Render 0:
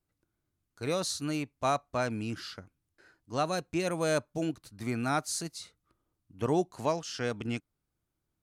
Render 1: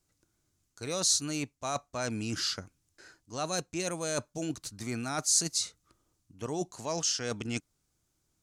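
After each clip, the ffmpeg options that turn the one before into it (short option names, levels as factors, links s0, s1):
-af "areverse,acompressor=threshold=0.0158:ratio=6,areverse,equalizer=f=6600:t=o:w=1.2:g=12.5,volume=1.68"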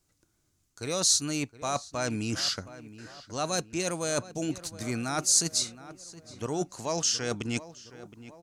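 -filter_complex "[0:a]asplit=2[s0][s1];[s1]adelay=718,lowpass=f=2500:p=1,volume=0.168,asplit=2[s2][s3];[s3]adelay=718,lowpass=f=2500:p=1,volume=0.54,asplit=2[s4][s5];[s5]adelay=718,lowpass=f=2500:p=1,volume=0.54,asplit=2[s6][s7];[s7]adelay=718,lowpass=f=2500:p=1,volume=0.54,asplit=2[s8][s9];[s9]adelay=718,lowpass=f=2500:p=1,volume=0.54[s10];[s0][s2][s4][s6][s8][s10]amix=inputs=6:normalize=0,volume=1.41"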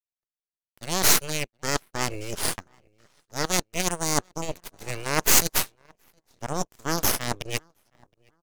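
-filter_complex "[0:a]acrossover=split=140|1500|7000[s0][s1][s2][s3];[s2]acrusher=bits=3:mode=log:mix=0:aa=0.000001[s4];[s0][s1][s4][s3]amix=inputs=4:normalize=0,aeval=exprs='0.355*(cos(1*acos(clip(val(0)/0.355,-1,1)))-cos(1*PI/2))+0.0126*(cos(3*acos(clip(val(0)/0.355,-1,1)))-cos(3*PI/2))+0.0251*(cos(5*acos(clip(val(0)/0.355,-1,1)))-cos(5*PI/2))+0.112*(cos(6*acos(clip(val(0)/0.355,-1,1)))-cos(6*PI/2))+0.0631*(cos(7*acos(clip(val(0)/0.355,-1,1)))-cos(7*PI/2))':c=same,volume=1.41"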